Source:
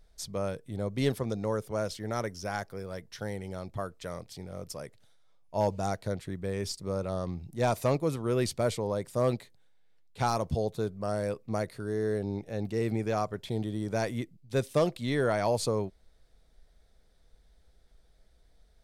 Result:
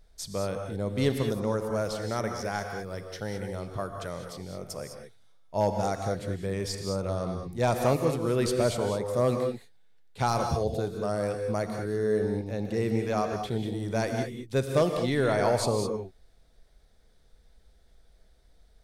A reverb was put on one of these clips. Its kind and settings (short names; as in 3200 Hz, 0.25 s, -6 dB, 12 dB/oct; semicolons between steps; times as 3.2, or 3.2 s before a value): non-linear reverb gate 0.23 s rising, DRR 4.5 dB; gain +1.5 dB